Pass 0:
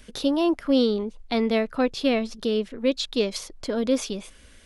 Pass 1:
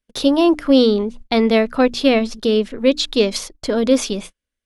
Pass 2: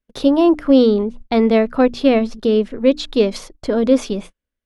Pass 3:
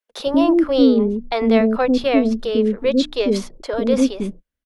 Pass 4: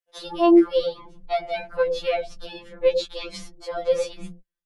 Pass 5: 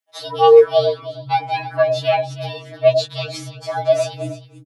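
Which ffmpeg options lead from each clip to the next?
ffmpeg -i in.wav -af "bandreject=frequency=60:width_type=h:width=6,bandreject=frequency=120:width_type=h:width=6,bandreject=frequency=180:width_type=h:width=6,bandreject=frequency=240:width_type=h:width=6,bandreject=frequency=300:width_type=h:width=6,agate=range=-41dB:threshold=-39dB:ratio=16:detection=peak,volume=8dB" out.wav
ffmpeg -i in.wav -af "highshelf=frequency=2300:gain=-11,volume=1.5dB" out.wav
ffmpeg -i in.wav -filter_complex "[0:a]acrossover=split=440[link_01][link_02];[link_01]adelay=100[link_03];[link_03][link_02]amix=inputs=2:normalize=0" out.wav
ffmpeg -i in.wav -af "afftfilt=real='re*2.83*eq(mod(b,8),0)':imag='im*2.83*eq(mod(b,8),0)':win_size=2048:overlap=0.75,volume=-3.5dB" out.wav
ffmpeg -i in.wav -filter_complex "[0:a]acrossover=split=260|2200[link_01][link_02][link_03];[link_01]volume=23.5dB,asoftclip=hard,volume=-23.5dB[link_04];[link_04][link_02][link_03]amix=inputs=3:normalize=0,afreqshift=120,aecho=1:1:315:0.188,volume=6dB" out.wav

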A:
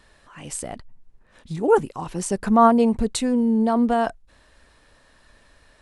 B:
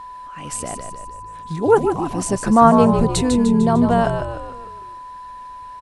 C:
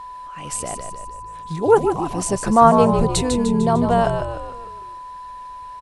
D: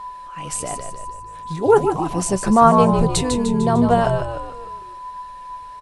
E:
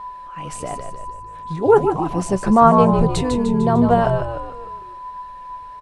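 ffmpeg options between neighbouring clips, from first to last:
ffmpeg -i in.wav -filter_complex "[0:a]asplit=2[link_01][link_02];[link_02]asplit=6[link_03][link_04][link_05][link_06][link_07][link_08];[link_03]adelay=150,afreqshift=-55,volume=-6.5dB[link_09];[link_04]adelay=300,afreqshift=-110,volume=-12.2dB[link_10];[link_05]adelay=450,afreqshift=-165,volume=-17.9dB[link_11];[link_06]adelay=600,afreqshift=-220,volume=-23.5dB[link_12];[link_07]adelay=750,afreqshift=-275,volume=-29.2dB[link_13];[link_08]adelay=900,afreqshift=-330,volume=-34.9dB[link_14];[link_09][link_10][link_11][link_12][link_13][link_14]amix=inputs=6:normalize=0[link_15];[link_01][link_15]amix=inputs=2:normalize=0,aeval=exprs='val(0)+0.0158*sin(2*PI*1000*n/s)':channel_layout=same,volume=3dB" out.wav
ffmpeg -i in.wav -af "equalizer=frequency=100:width_type=o:width=0.67:gain=-3,equalizer=frequency=250:width_type=o:width=0.67:gain=-6,equalizer=frequency=1600:width_type=o:width=0.67:gain=-3,volume=1dB" out.wav
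ffmpeg -i in.wav -af "flanger=delay=4.8:depth=3.8:regen=62:speed=0.39:shape=triangular,volume=5dB" out.wav
ffmpeg -i in.wav -af "highshelf=frequency=4000:gain=-12,volume=1dB" out.wav

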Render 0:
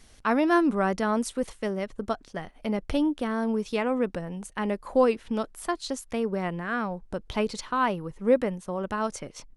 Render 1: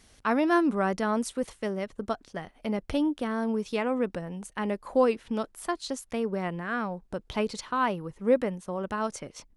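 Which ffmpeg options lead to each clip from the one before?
ffmpeg -i in.wav -af "highpass=frequency=42:poles=1,volume=-1.5dB" out.wav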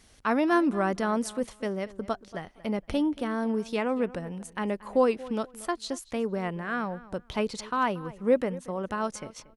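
ffmpeg -i in.wav -filter_complex "[0:a]asplit=2[link_01][link_02];[link_02]adelay=232,lowpass=frequency=4400:poles=1,volume=-18.5dB,asplit=2[link_03][link_04];[link_04]adelay=232,lowpass=frequency=4400:poles=1,volume=0.21[link_05];[link_01][link_03][link_05]amix=inputs=3:normalize=0" out.wav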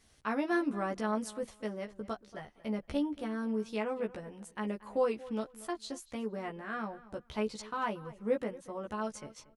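ffmpeg -i in.wav -filter_complex "[0:a]asplit=2[link_01][link_02];[link_02]adelay=14,volume=-2.5dB[link_03];[link_01][link_03]amix=inputs=2:normalize=0,volume=-9dB" out.wav

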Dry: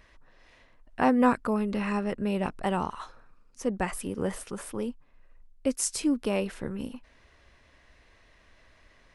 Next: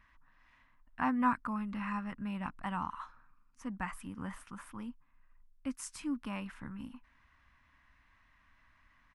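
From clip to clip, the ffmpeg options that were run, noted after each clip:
ffmpeg -i in.wav -af "firequalizer=gain_entry='entry(280,0);entry(400,-19);entry(1000,6);entry(4200,-7)':delay=0.05:min_phase=1,volume=-8.5dB" out.wav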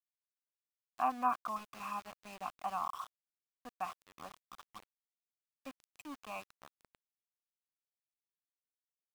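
ffmpeg -i in.wav -filter_complex "[0:a]asplit=3[link_01][link_02][link_03];[link_01]bandpass=frequency=730:width_type=q:width=8,volume=0dB[link_04];[link_02]bandpass=frequency=1090:width_type=q:width=8,volume=-6dB[link_05];[link_03]bandpass=frequency=2440:width_type=q:width=8,volume=-9dB[link_06];[link_04][link_05][link_06]amix=inputs=3:normalize=0,aeval=exprs='val(0)*gte(abs(val(0)),0.00141)':channel_layout=same,volume=10dB" out.wav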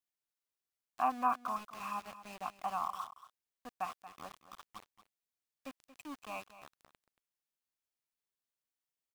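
ffmpeg -i in.wav -af "aecho=1:1:230:0.188,volume=1dB" out.wav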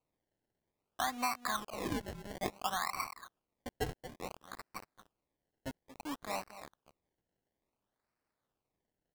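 ffmpeg -i in.wav -af "acompressor=threshold=-36dB:ratio=6,acrusher=samples=25:mix=1:aa=0.000001:lfo=1:lforange=25:lforate=0.58,volume=5dB" out.wav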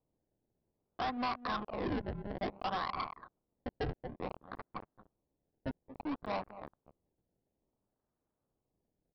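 ffmpeg -i in.wav -af "adynamicsmooth=sensitivity=3.5:basefreq=730,aresample=11025,asoftclip=type=hard:threshold=-37.5dB,aresample=44100,volume=6dB" out.wav

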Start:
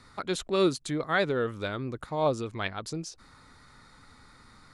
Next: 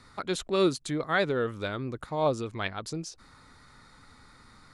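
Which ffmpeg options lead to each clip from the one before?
ffmpeg -i in.wav -af anull out.wav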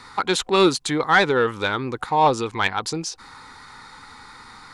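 ffmpeg -i in.wav -filter_complex "[0:a]superequalizer=8b=0.501:9b=1.78,asplit=2[link_01][link_02];[link_02]highpass=frequency=720:poles=1,volume=10dB,asoftclip=type=tanh:threshold=-13.5dB[link_03];[link_01][link_03]amix=inputs=2:normalize=0,lowpass=frequency=6300:poles=1,volume=-6dB,volume=8dB" out.wav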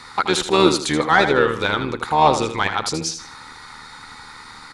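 ffmpeg -i in.wav -filter_complex "[0:a]acrossover=split=1500[link_01][link_02];[link_01]tremolo=f=77:d=0.71[link_03];[link_02]alimiter=limit=-18dB:level=0:latency=1:release=27[link_04];[link_03][link_04]amix=inputs=2:normalize=0,aecho=1:1:79|158|237|316:0.355|0.11|0.0341|0.0106,volume=5dB" out.wav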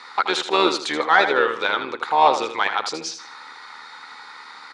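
ffmpeg -i in.wav -af "highpass=460,lowpass=4800" out.wav

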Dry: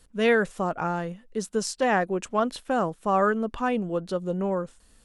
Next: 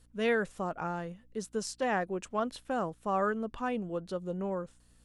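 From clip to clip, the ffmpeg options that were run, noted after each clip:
ffmpeg -i in.wav -af "aeval=exprs='val(0)+0.00141*(sin(2*PI*60*n/s)+sin(2*PI*2*60*n/s)/2+sin(2*PI*3*60*n/s)/3+sin(2*PI*4*60*n/s)/4+sin(2*PI*5*60*n/s)/5)':channel_layout=same,volume=-7.5dB" out.wav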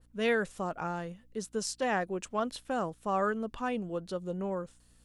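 ffmpeg -i in.wav -af "adynamicequalizer=threshold=0.00562:dfrequency=2600:dqfactor=0.7:tfrequency=2600:tqfactor=0.7:attack=5:release=100:ratio=0.375:range=2:mode=boostabove:tftype=highshelf" out.wav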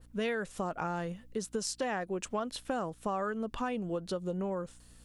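ffmpeg -i in.wav -af "acompressor=threshold=-37dB:ratio=6,volume=6dB" out.wav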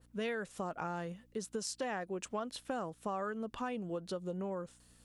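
ffmpeg -i in.wav -af "highpass=frequency=77:poles=1,volume=-4dB" out.wav

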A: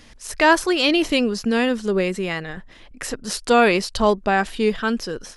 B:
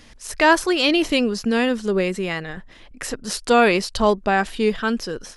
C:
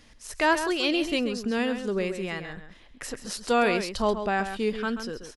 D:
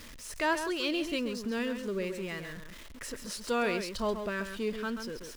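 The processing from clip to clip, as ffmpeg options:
ffmpeg -i in.wav -af anull out.wav
ffmpeg -i in.wav -filter_complex "[0:a]asplit=2[link_01][link_02];[link_02]adelay=134.1,volume=-9dB,highshelf=frequency=4000:gain=-3.02[link_03];[link_01][link_03]amix=inputs=2:normalize=0,volume=-7.5dB" out.wav
ffmpeg -i in.wav -af "aeval=exprs='val(0)+0.5*0.015*sgn(val(0))':channel_layout=same,asuperstop=centerf=770:order=4:qfactor=5.6,volume=-7dB" out.wav

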